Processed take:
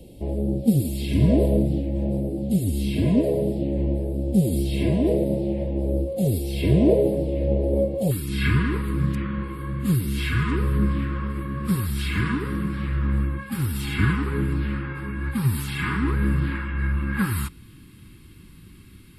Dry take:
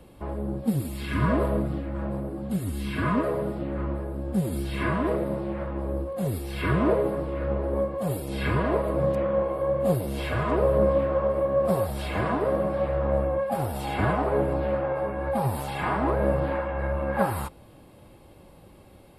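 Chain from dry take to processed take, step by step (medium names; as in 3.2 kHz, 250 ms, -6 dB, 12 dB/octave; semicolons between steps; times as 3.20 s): Butterworth band-stop 1.3 kHz, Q 0.53, from 8.10 s 650 Hz; trim +6.5 dB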